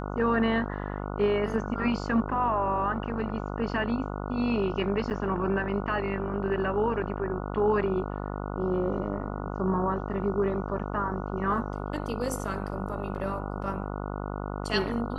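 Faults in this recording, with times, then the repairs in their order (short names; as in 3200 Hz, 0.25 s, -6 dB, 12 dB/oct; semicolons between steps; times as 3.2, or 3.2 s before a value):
buzz 50 Hz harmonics 29 -34 dBFS
5.1–5.11 gap 8.8 ms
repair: de-hum 50 Hz, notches 29; interpolate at 5.1, 8.8 ms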